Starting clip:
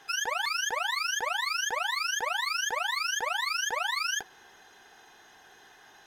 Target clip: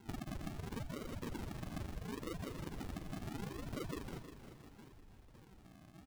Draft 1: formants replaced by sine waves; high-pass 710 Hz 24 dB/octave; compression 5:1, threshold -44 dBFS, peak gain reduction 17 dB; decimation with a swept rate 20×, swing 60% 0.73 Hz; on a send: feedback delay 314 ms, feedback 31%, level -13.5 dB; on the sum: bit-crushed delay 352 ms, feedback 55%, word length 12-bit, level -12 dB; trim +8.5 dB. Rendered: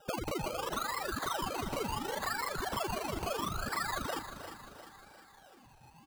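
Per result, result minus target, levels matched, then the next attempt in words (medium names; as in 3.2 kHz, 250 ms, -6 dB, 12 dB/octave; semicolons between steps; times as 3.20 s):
compression: peak gain reduction -7.5 dB; decimation with a swept rate: distortion -9 dB
formants replaced by sine waves; high-pass 710 Hz 24 dB/octave; compression 5:1, threshold -53.5 dBFS, peak gain reduction 24.5 dB; decimation with a swept rate 20×, swing 60% 0.73 Hz; on a send: feedback delay 314 ms, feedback 31%, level -13.5 dB; on the sum: bit-crushed delay 352 ms, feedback 55%, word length 12-bit, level -12 dB; trim +8.5 dB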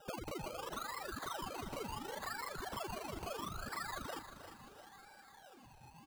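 decimation with a swept rate: distortion -9 dB
formants replaced by sine waves; high-pass 710 Hz 24 dB/octave; compression 5:1, threshold -53.5 dBFS, peak gain reduction 24.5 dB; decimation with a swept rate 73×, swing 60% 0.73 Hz; on a send: feedback delay 314 ms, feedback 31%, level -13.5 dB; on the sum: bit-crushed delay 352 ms, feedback 55%, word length 12-bit, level -12 dB; trim +8.5 dB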